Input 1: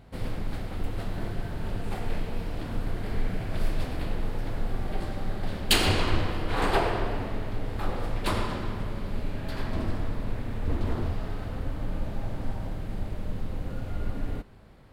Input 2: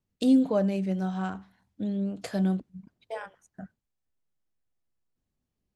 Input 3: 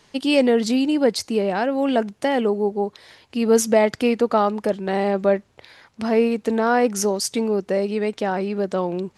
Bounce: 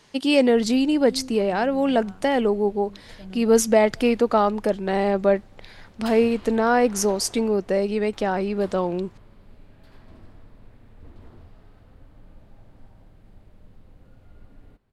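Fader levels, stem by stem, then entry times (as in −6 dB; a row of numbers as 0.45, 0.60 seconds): −18.0, −15.0, −0.5 decibels; 0.35, 0.85, 0.00 seconds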